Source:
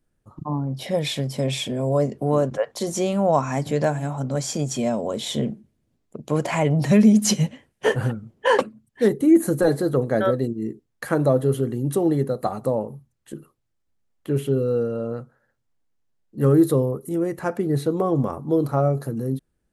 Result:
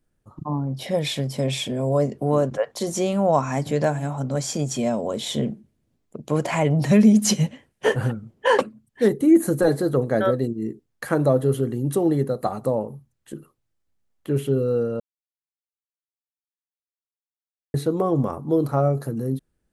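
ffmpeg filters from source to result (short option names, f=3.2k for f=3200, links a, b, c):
-filter_complex "[0:a]asplit=3[a][b][c];[a]atrim=end=15,asetpts=PTS-STARTPTS,afade=t=out:st=14.996:d=0.004:c=hsin[d];[b]atrim=start=15:end=17.74,asetpts=PTS-STARTPTS,volume=0[e];[c]atrim=start=17.74,asetpts=PTS-STARTPTS,afade=t=in:d=0.004:c=hsin[f];[d][e][f]concat=n=3:v=0:a=1"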